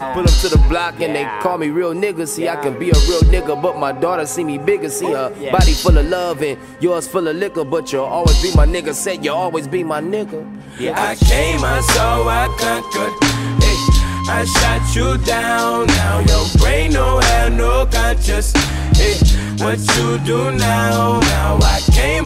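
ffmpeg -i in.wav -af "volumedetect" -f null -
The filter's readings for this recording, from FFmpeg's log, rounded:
mean_volume: -14.4 dB
max_volume: -1.9 dB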